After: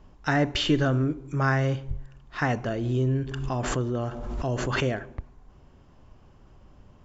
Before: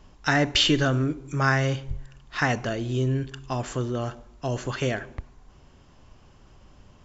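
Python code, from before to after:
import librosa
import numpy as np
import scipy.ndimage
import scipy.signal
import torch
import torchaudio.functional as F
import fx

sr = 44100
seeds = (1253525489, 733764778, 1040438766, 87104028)

y = fx.high_shelf(x, sr, hz=2000.0, db=-10.0)
y = fx.pre_swell(y, sr, db_per_s=30.0, at=(2.66, 5.03))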